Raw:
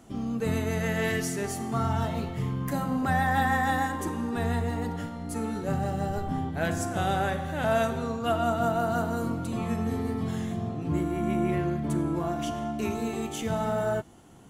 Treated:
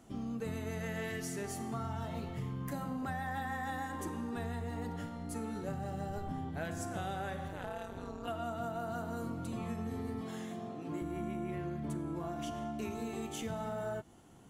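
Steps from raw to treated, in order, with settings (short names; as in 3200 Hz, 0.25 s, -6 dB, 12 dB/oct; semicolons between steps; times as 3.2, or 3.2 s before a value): 10.21–11.02 HPF 250 Hz 12 dB/oct; compressor, threshold -29 dBFS, peak gain reduction 8.5 dB; 7.48–8.28 AM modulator 190 Hz, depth 95%; gain -6 dB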